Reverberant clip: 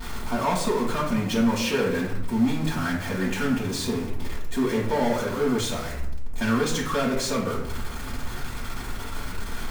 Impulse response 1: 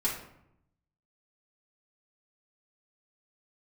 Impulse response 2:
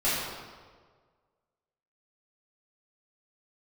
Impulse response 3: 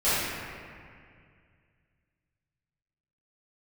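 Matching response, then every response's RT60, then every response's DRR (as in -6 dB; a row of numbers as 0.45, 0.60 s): 1; 0.75, 1.6, 2.2 s; -7.0, -12.0, -15.5 dB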